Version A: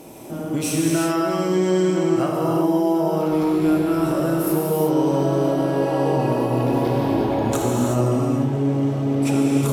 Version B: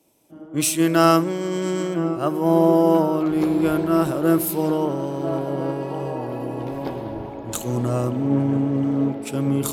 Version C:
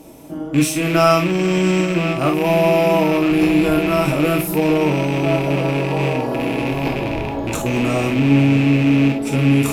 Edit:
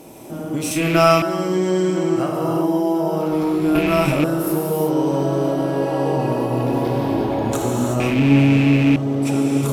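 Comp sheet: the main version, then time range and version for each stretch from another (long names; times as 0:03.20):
A
0:00.71–0:01.22: punch in from C
0:03.75–0:04.24: punch in from C
0:08.00–0:08.96: punch in from C
not used: B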